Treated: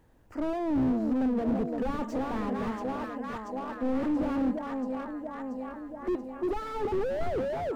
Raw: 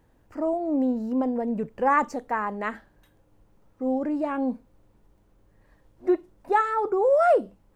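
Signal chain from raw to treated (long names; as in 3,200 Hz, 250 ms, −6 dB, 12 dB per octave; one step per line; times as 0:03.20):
delay that swaps between a low-pass and a high-pass 341 ms, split 1,100 Hz, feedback 81%, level −7.5 dB
slew-rate limiting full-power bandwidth 18 Hz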